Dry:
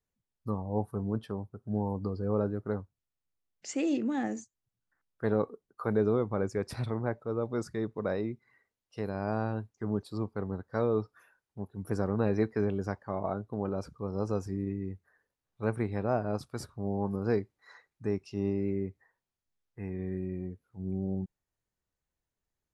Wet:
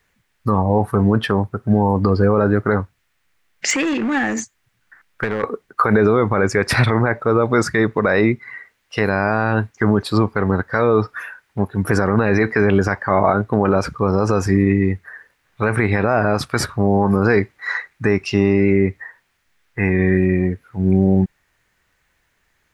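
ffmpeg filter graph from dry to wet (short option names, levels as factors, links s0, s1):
-filter_complex "[0:a]asettb=1/sr,asplit=3[s0][s1][s2];[s0]atrim=end=3.704[s3];[s1]atrim=start=3.7:end=5.44,asetpts=PTS-STARTPTS,afade=t=in:d=0.004:c=qsin,afade=t=out:st=1.736:d=0.004:c=qsin,acompressor=threshold=0.0158:ratio=10:attack=3.2:release=140:knee=1:detection=peak,asoftclip=type=hard:threshold=0.015[s4];[s2]atrim=start=5.436[s5];[s3][s4]acrossfade=d=0.004:c1=hsin:c2=qsin[s6];[s6][s5]acrossfade=d=0.004:c1=qsin:c2=hsin,equalizer=f=1900:t=o:w=1.6:g=14,alimiter=level_in=13.3:limit=0.891:release=50:level=0:latency=1,volume=0.668"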